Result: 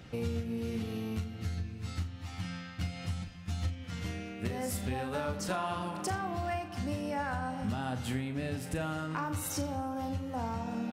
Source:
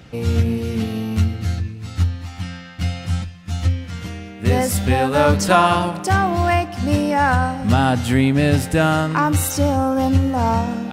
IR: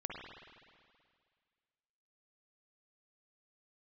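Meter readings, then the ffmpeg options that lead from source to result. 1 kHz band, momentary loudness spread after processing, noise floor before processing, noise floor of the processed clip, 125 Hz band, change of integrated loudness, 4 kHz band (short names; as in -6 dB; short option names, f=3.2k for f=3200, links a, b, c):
-18.0 dB, 5 LU, -36 dBFS, -45 dBFS, -17.0 dB, -17.5 dB, -15.5 dB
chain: -filter_complex "[0:a]acompressor=threshold=-24dB:ratio=10,asplit=2[a][b];[b]adelay=39,volume=-9.5dB[c];[a][c]amix=inputs=2:normalize=0,asplit=2[d][e];[1:a]atrim=start_sample=2205,lowpass=7.8k,adelay=86[f];[e][f]afir=irnorm=-1:irlink=0,volume=-13dB[g];[d][g]amix=inputs=2:normalize=0,volume=-7.5dB"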